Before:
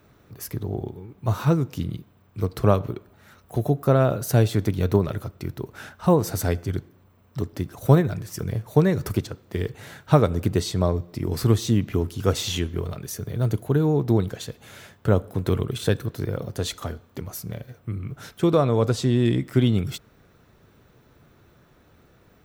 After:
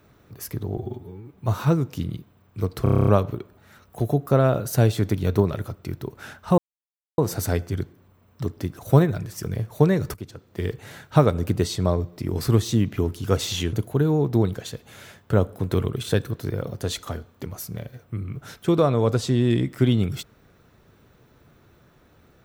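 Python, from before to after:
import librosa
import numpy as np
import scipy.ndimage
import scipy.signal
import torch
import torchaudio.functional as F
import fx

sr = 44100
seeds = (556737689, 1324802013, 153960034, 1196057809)

y = fx.edit(x, sr, fx.stretch_span(start_s=0.77, length_s=0.4, factor=1.5),
    fx.stutter(start_s=2.63, slice_s=0.03, count=9),
    fx.insert_silence(at_s=6.14, length_s=0.6),
    fx.fade_in_from(start_s=9.1, length_s=0.51, floor_db=-19.5),
    fx.cut(start_s=12.69, length_s=0.79), tone=tone)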